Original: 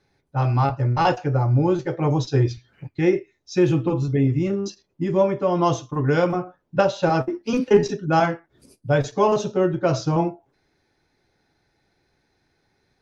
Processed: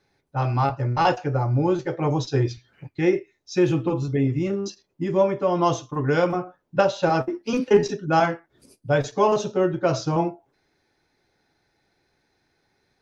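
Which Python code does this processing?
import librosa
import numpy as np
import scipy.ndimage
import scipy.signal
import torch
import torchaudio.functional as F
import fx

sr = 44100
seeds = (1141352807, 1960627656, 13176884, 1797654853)

y = fx.low_shelf(x, sr, hz=210.0, db=-5.0)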